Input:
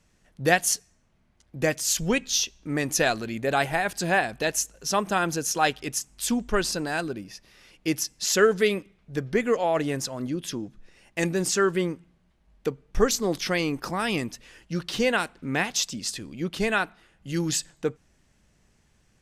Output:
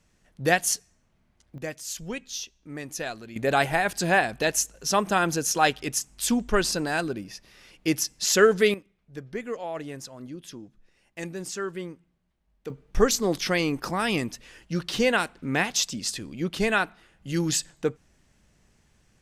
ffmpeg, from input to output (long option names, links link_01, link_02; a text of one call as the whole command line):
ffmpeg -i in.wav -af "asetnsamples=nb_out_samples=441:pad=0,asendcmd='1.58 volume volume -10dB;3.36 volume volume 1.5dB;8.74 volume volume -9.5dB;12.7 volume volume 1dB',volume=-1dB" out.wav